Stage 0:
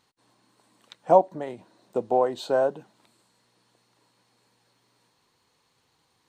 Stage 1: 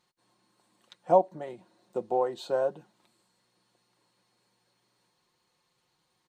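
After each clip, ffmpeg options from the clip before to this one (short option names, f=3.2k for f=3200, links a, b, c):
-af "aecho=1:1:5.6:0.51,volume=-6.5dB"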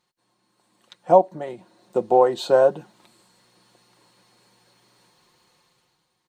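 -af "dynaudnorm=f=110:g=13:m=13dB"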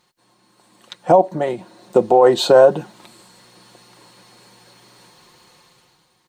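-af "alimiter=level_in=12dB:limit=-1dB:release=50:level=0:latency=1,volume=-1dB"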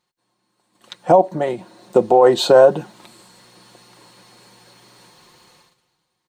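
-af "agate=range=-12dB:threshold=-52dB:ratio=16:detection=peak"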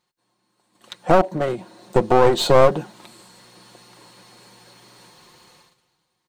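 -af "aeval=exprs='clip(val(0),-1,0.075)':c=same"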